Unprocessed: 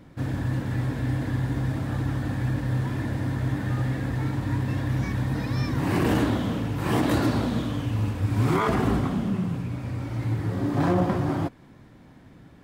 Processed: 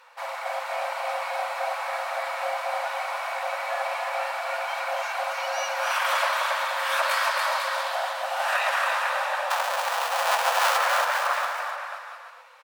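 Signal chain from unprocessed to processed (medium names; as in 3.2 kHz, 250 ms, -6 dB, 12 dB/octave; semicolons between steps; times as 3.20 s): 9.50–10.77 s: square wave that keeps the level; frequency shift +480 Hz; high-pass 560 Hz 12 dB/octave; treble shelf 3.8 kHz -3 dB; band-stop 2.1 kHz, Q 15; 7.45–8.95 s: short-mantissa float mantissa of 6-bit; spectral gate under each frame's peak -10 dB weak; bouncing-ball echo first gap 280 ms, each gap 0.8×, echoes 5; trim +6 dB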